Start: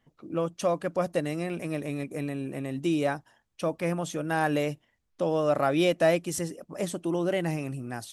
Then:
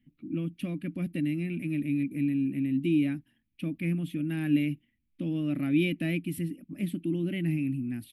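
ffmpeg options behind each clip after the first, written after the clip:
-af "firequalizer=gain_entry='entry(110,0);entry(280,8);entry(440,-20);entry(930,-27);entry(2300,1);entry(6300,-28);entry(11000,-3)':delay=0.05:min_phase=1"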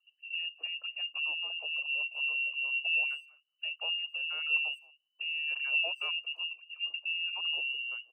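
-filter_complex "[0:a]lowpass=f=2.6k:t=q:w=0.5098,lowpass=f=2.6k:t=q:w=0.6013,lowpass=f=2.6k:t=q:w=0.9,lowpass=f=2.6k:t=q:w=2.563,afreqshift=-3000,asplit=2[a][b];[b]adelay=220,highpass=300,lowpass=3.4k,asoftclip=type=hard:threshold=-24dB,volume=-24dB[c];[a][c]amix=inputs=2:normalize=0,afftfilt=real='re*gte(b*sr/1024,260*pow(2000/260,0.5+0.5*sin(2*PI*5.9*pts/sr)))':imag='im*gte(b*sr/1024,260*pow(2000/260,0.5+0.5*sin(2*PI*5.9*pts/sr)))':win_size=1024:overlap=0.75,volume=-5dB"

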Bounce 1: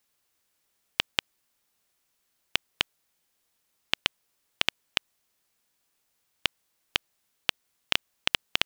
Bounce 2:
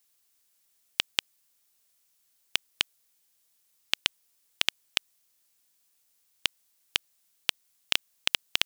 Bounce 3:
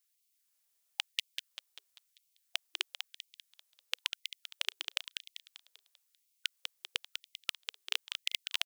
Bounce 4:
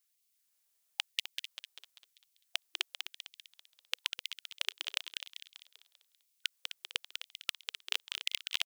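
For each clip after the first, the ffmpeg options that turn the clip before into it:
-af "highshelf=f=3.3k:g=12,volume=-5.5dB"
-filter_complex "[0:a]asplit=7[a][b][c][d][e][f][g];[b]adelay=196,afreqshift=96,volume=-6dB[h];[c]adelay=392,afreqshift=192,volume=-12.6dB[i];[d]adelay=588,afreqshift=288,volume=-19.1dB[j];[e]adelay=784,afreqshift=384,volume=-25.7dB[k];[f]adelay=980,afreqshift=480,volume=-32.2dB[l];[g]adelay=1176,afreqshift=576,volume=-38.8dB[m];[a][h][i][j][k][l][m]amix=inputs=7:normalize=0,afftfilt=real='re*gte(b*sr/1024,340*pow(2100/340,0.5+0.5*sin(2*PI*0.99*pts/sr)))':imag='im*gte(b*sr/1024,340*pow(2100/340,0.5+0.5*sin(2*PI*0.99*pts/sr)))':win_size=1024:overlap=0.75,volume=-8dB"
-af "aecho=1:1:256:0.282"

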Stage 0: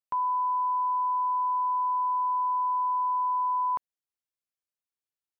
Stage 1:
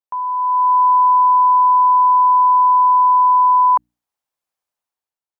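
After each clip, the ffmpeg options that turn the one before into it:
-af "equalizer=f=840:t=o:w=1.2:g=10.5,dynaudnorm=f=120:g=9:m=11.5dB,bandreject=f=60:t=h:w=6,bandreject=f=120:t=h:w=6,bandreject=f=180:t=h:w=6,bandreject=f=240:t=h:w=6,bandreject=f=300:t=h:w=6,volume=-4.5dB"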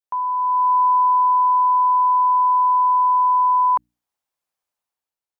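-af "adynamicequalizer=threshold=0.0501:dfrequency=790:dqfactor=0.85:tfrequency=790:tqfactor=0.85:attack=5:release=100:ratio=0.375:range=2.5:mode=cutabove:tftype=bell"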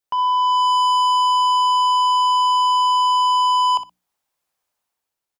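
-filter_complex "[0:a]asoftclip=type=tanh:threshold=-24dB,asplit=2[a][b];[b]aecho=0:1:61|122:0.237|0.0403[c];[a][c]amix=inputs=2:normalize=0,volume=6.5dB"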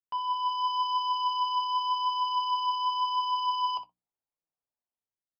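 -af "adynamicsmooth=sensitivity=3.5:basefreq=930,flanger=delay=6:depth=3.6:regen=48:speed=0.9:shape=triangular,aresample=11025,aresample=44100,volume=-8dB"

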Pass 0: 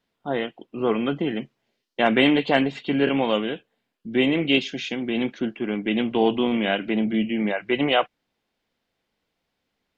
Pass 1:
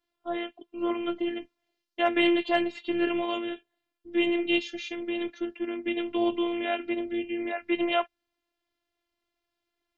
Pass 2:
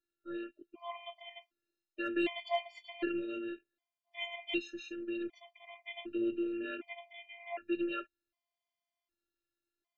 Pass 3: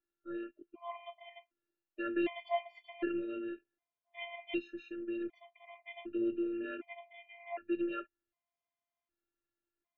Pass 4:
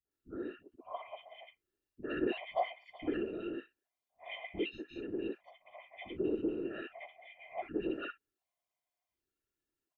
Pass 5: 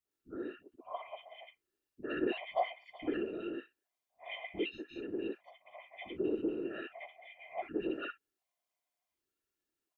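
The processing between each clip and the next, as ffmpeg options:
-af "afftfilt=real='hypot(re,im)*cos(PI*b)':imag='0':win_size=512:overlap=0.75,volume=-2.5dB"
-af "afftfilt=real='re*gt(sin(2*PI*0.66*pts/sr)*(1-2*mod(floor(b*sr/1024/610),2)),0)':imag='im*gt(sin(2*PI*0.66*pts/sr)*(1-2*mod(floor(b*sr/1024/610),2)),0)':win_size=1024:overlap=0.75,volume=-6.5dB"
-af "lowpass=2.1k"
-filter_complex "[0:a]afftfilt=real='hypot(re,im)*cos(2*PI*random(0))':imag='hypot(re,im)*sin(2*PI*random(1))':win_size=512:overlap=0.75,acrossover=split=210|1400[a][b][c];[b]adelay=50[d];[c]adelay=110[e];[a][d][e]amix=inputs=3:normalize=0,volume=7dB"
-af "lowshelf=f=130:g=-8.5,volume=1dB"

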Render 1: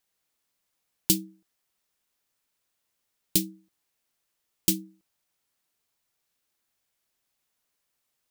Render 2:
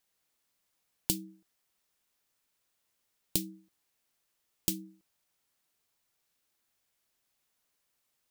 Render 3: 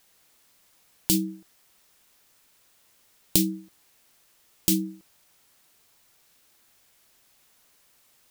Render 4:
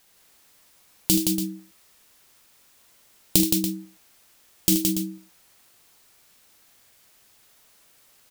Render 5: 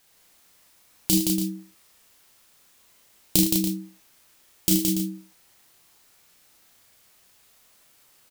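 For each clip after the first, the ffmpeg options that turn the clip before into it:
-af "acompressor=threshold=-26dB:ratio=10"
-af "alimiter=level_in=18.5dB:limit=-1dB:release=50:level=0:latency=1,volume=-2dB"
-af "aecho=1:1:44|77|169|285:0.299|0.335|0.631|0.282,volume=2dB"
-filter_complex "[0:a]asplit=2[a][b];[b]adelay=32,volume=-3dB[c];[a][c]amix=inputs=2:normalize=0,volume=-2.5dB"

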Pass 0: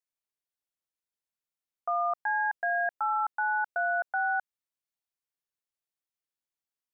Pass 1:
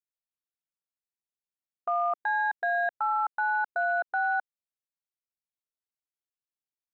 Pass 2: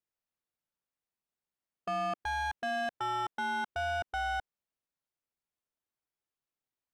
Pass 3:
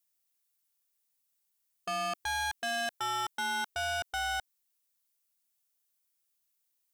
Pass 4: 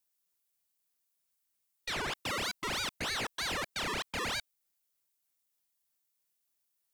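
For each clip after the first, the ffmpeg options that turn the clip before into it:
-af "afwtdn=0.00708,lowshelf=f=470:g=5,alimiter=level_in=1.5dB:limit=-24dB:level=0:latency=1,volume=-1.5dB,volume=5dB"
-af "acontrast=53,asoftclip=type=tanh:threshold=-29.5dB,highshelf=f=2.6k:g=-10.5"
-af "crystalizer=i=7:c=0,volume=-4dB"
-af "aeval=exprs='val(0)*sin(2*PI*1700*n/s+1700*0.85/3.2*sin(2*PI*3.2*n/s))':c=same,volume=1dB"

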